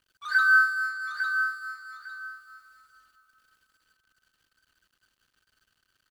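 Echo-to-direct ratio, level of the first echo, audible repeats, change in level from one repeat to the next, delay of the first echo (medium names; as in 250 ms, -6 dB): -6.5 dB, -6.5 dB, 2, -13.0 dB, 853 ms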